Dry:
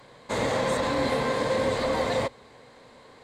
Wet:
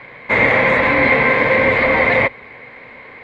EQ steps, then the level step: synth low-pass 2200 Hz, resonance Q 6.9; +8.5 dB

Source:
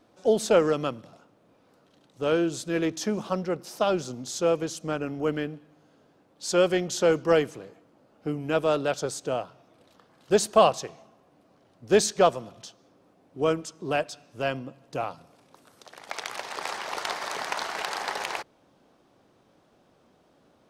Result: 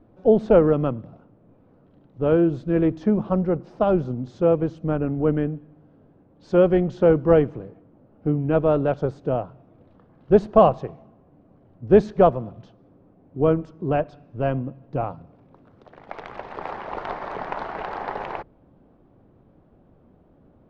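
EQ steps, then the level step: LPF 3000 Hz 12 dB/oct; dynamic EQ 880 Hz, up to +3 dB, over -36 dBFS, Q 0.93; tilt -4.5 dB/oct; -1.0 dB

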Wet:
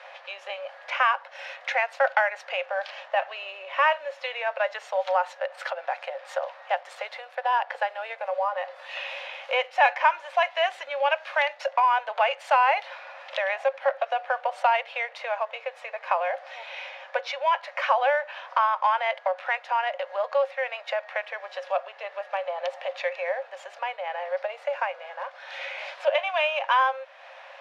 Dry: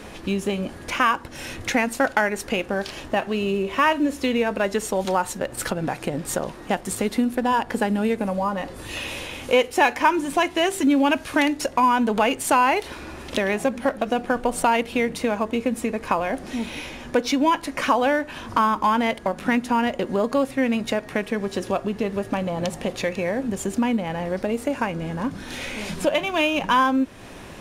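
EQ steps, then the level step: rippled Chebyshev high-pass 530 Hz, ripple 3 dB; air absorption 240 m; +1.5 dB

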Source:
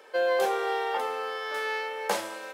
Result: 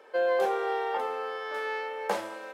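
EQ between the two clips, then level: high shelf 2700 Hz -10.5 dB; 0.0 dB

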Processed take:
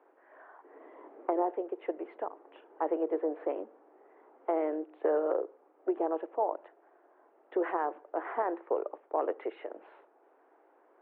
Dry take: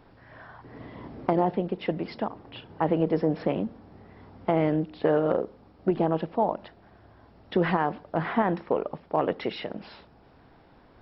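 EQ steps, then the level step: Gaussian blur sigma 4.6 samples; steep high-pass 330 Hz 48 dB/oct; -4.0 dB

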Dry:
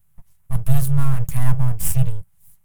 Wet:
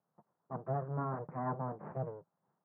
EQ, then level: HPF 270 Hz 24 dB/oct; Bessel low-pass 820 Hz, order 8; air absorption 310 m; +3.5 dB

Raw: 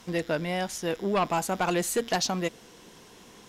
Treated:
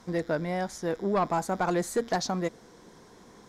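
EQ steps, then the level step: bell 2800 Hz -14 dB 0.47 oct; high shelf 4500 Hz -5.5 dB; high shelf 12000 Hz -10.5 dB; 0.0 dB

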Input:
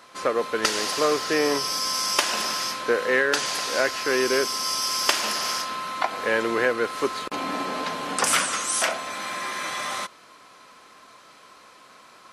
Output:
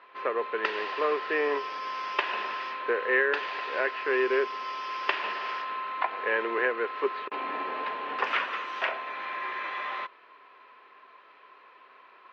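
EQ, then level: air absorption 140 m; speaker cabinet 370–3700 Hz, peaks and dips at 400 Hz +9 dB, 1000 Hz +7 dB, 1800 Hz +7 dB, 2600 Hz +7 dB; -7.5 dB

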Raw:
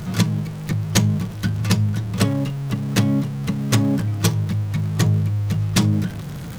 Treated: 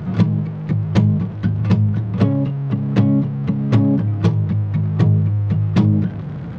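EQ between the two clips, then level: HPF 78 Hz; dynamic EQ 1600 Hz, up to -4 dB, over -39 dBFS, Q 1.4; tape spacing loss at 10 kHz 41 dB; +5.0 dB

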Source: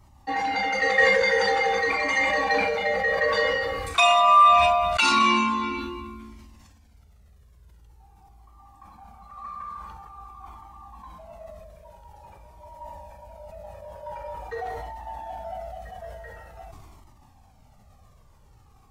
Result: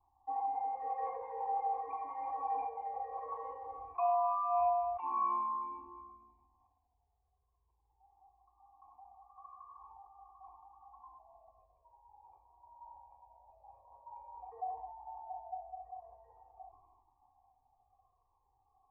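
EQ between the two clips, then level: vocal tract filter a; tilt shelf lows +7 dB, about 1400 Hz; fixed phaser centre 920 Hz, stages 8; -4.0 dB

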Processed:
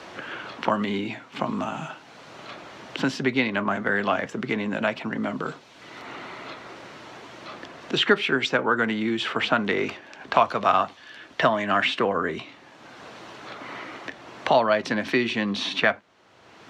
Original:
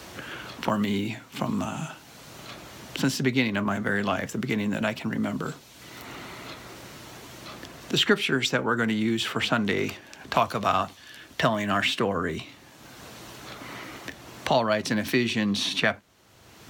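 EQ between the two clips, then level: HPF 530 Hz 6 dB/oct; tape spacing loss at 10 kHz 23 dB; +7.5 dB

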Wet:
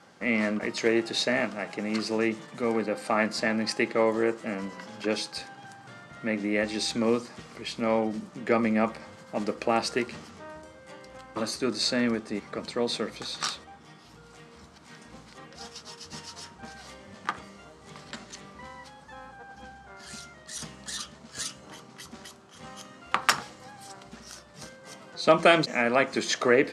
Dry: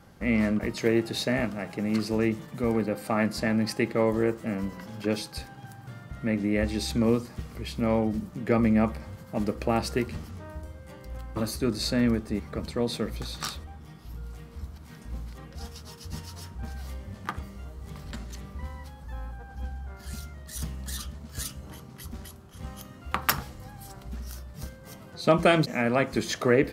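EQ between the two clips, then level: HPF 190 Hz 12 dB/oct; LPF 8600 Hz 24 dB/oct; low shelf 420 Hz -7.5 dB; +4.0 dB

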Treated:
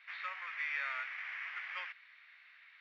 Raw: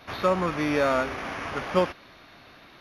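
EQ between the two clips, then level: ladder high-pass 1800 Hz, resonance 60%; tape spacing loss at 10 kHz 43 dB; high shelf 4500 Hz +6 dB; +7.0 dB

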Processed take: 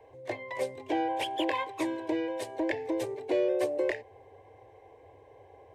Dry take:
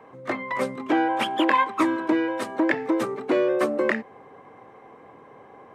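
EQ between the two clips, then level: resonant low shelf 120 Hz +7.5 dB, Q 3; fixed phaser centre 530 Hz, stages 4; -3.5 dB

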